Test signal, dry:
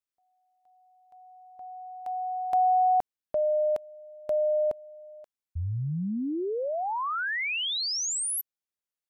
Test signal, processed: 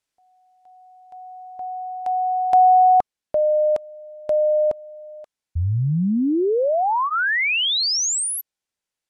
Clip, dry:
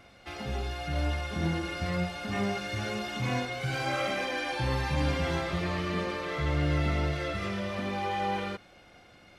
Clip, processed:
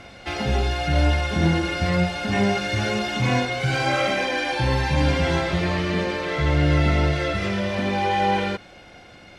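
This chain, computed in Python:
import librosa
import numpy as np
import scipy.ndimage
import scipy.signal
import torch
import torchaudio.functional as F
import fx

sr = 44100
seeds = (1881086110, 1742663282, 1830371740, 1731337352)

y = scipy.signal.sosfilt(scipy.signal.butter(2, 9400.0, 'lowpass', fs=sr, output='sos'), x)
y = fx.notch(y, sr, hz=1200.0, q=12.0)
y = fx.rider(y, sr, range_db=4, speed_s=2.0)
y = F.gain(torch.from_numpy(y), 9.0).numpy()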